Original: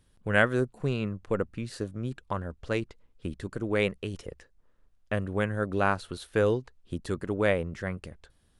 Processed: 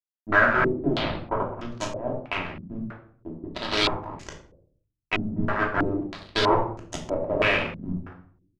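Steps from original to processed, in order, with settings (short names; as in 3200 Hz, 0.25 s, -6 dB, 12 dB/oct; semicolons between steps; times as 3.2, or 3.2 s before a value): on a send: frequency-shifting echo 0.121 s, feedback 59%, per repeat -77 Hz, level -10.5 dB; on the sum: added harmonics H 3 -33 dB, 7 -15 dB, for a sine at -8.5 dBFS; in parallel at -3 dB: compressor, threshold -33 dBFS, peak gain reduction 16.5 dB; on the sum: fuzz box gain 46 dB, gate -38 dBFS; 0.94–1.8 air absorption 300 m; shoebox room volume 690 m³, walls furnished, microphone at 2.9 m; stepped low-pass 3.1 Hz 210–6700 Hz; gain -7.5 dB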